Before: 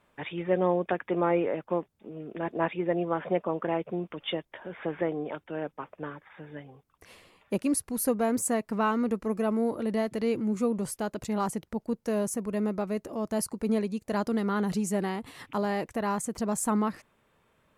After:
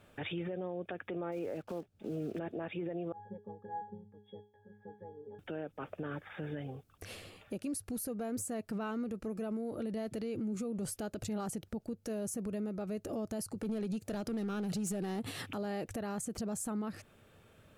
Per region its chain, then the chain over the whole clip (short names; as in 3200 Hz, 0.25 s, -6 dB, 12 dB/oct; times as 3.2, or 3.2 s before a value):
1.32–2.4 block floating point 5-bit + high shelf 6000 Hz -10 dB
3.12–5.39 G.711 law mismatch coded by A + bell 3000 Hz -12 dB 2 oct + octave resonator G#, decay 0.37 s
13.55–15.5 HPF 85 Hz 24 dB/oct + compressor 12:1, threshold -30 dBFS + overloaded stage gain 30.5 dB
whole clip: thirty-one-band EQ 100 Hz +11 dB, 1000 Hz -12 dB, 2000 Hz -6 dB; compressor 10:1, threshold -36 dBFS; limiter -37 dBFS; gain +6.5 dB